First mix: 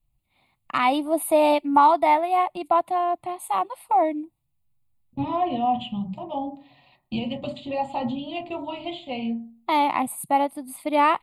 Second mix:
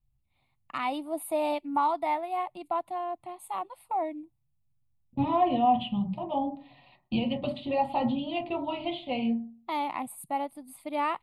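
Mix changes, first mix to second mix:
first voice -10.0 dB; second voice: remove synth low-pass 7300 Hz, resonance Q 12

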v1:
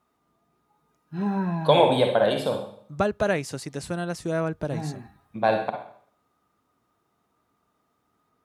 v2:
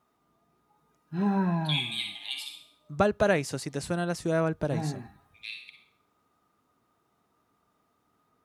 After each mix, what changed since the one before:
first voice: add steep high-pass 2100 Hz 96 dB/oct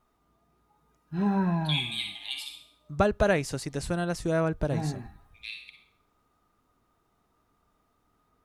master: remove HPF 110 Hz 12 dB/oct

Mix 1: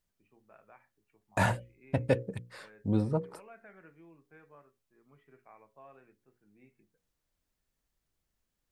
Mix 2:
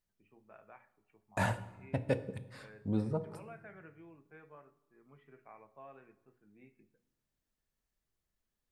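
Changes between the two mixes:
second voice -7.0 dB; reverb: on, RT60 1.1 s

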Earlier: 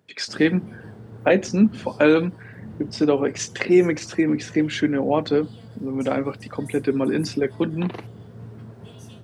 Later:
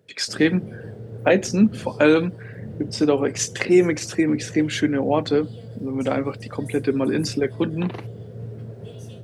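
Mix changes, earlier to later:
first voice: remove air absorption 74 m; background: add graphic EQ 125/250/500/1000 Hz +6/-3/+11/-9 dB

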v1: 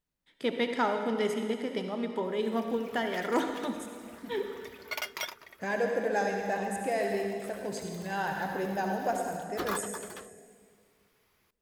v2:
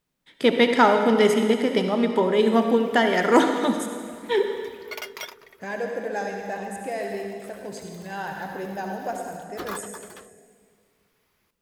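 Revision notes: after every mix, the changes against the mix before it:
first voice +11.5 dB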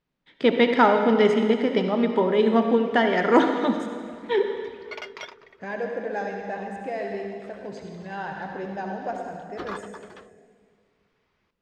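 master: add air absorption 160 m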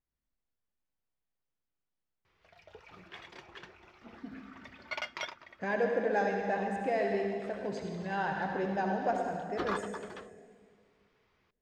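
first voice: muted

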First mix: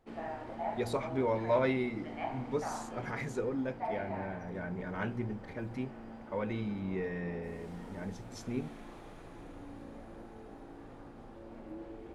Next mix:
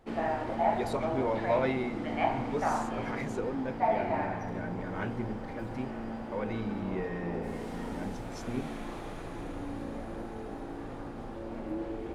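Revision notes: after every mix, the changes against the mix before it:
background +9.5 dB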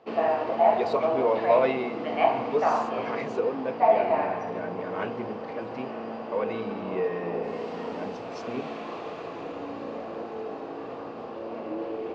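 master: add speaker cabinet 170–5900 Hz, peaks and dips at 460 Hz +10 dB, 670 Hz +8 dB, 1100 Hz +9 dB, 2700 Hz +9 dB, 4600 Hz +5 dB

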